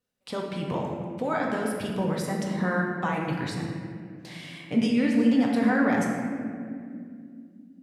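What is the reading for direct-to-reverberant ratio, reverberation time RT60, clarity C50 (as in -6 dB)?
-2.0 dB, 2.4 s, 1.0 dB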